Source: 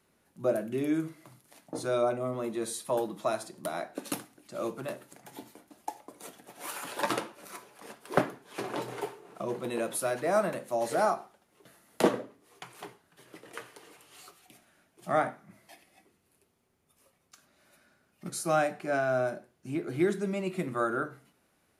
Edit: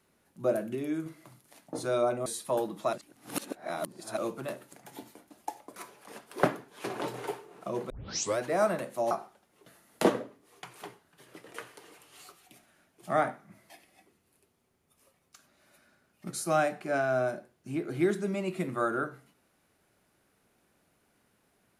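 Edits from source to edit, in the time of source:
0:00.75–0:01.06: clip gain −4 dB
0:02.26–0:02.66: remove
0:03.33–0:04.57: reverse
0:06.16–0:07.50: remove
0:09.64: tape start 0.49 s
0:10.85–0:11.10: remove

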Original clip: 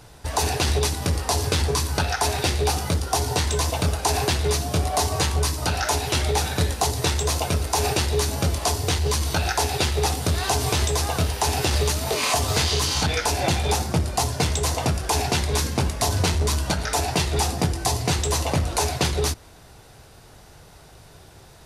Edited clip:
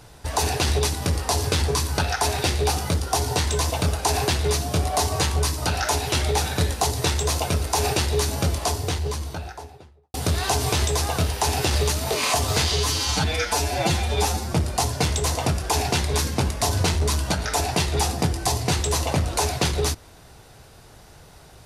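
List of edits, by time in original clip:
0:08.39–0:10.14: fade out and dull
0:12.72–0:13.93: time-stretch 1.5×

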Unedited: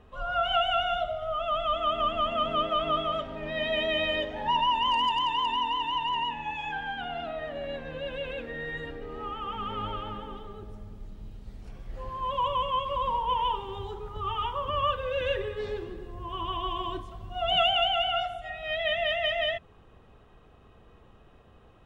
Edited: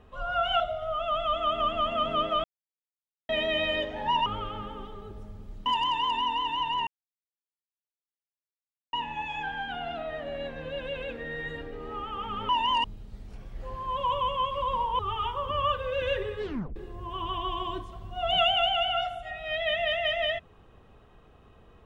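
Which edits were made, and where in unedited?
0:00.60–0:01.00: remove
0:02.84–0:03.69: silence
0:04.66–0:05.01: swap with 0:09.78–0:11.18
0:06.22: splice in silence 2.06 s
0:13.33–0:14.18: remove
0:15.62: tape stop 0.33 s

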